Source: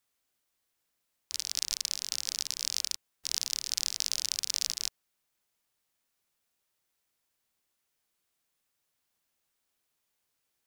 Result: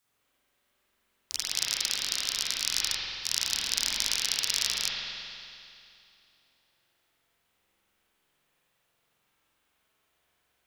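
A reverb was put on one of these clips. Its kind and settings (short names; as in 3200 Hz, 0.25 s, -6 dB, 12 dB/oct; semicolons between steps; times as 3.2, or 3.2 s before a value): spring tank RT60 2.6 s, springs 45 ms, chirp 70 ms, DRR -9 dB; gain +2 dB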